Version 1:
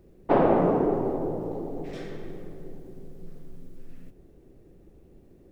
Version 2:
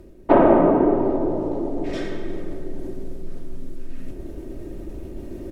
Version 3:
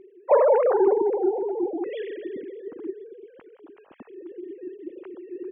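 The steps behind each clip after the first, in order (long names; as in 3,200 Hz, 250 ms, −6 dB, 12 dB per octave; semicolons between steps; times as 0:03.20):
treble cut that deepens with the level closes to 2,800 Hz, closed at −18.5 dBFS; comb filter 3.2 ms, depth 47%; reversed playback; upward compression, threshold −25 dBFS; reversed playback; level +5.5 dB
three sine waves on the formant tracks; level −4 dB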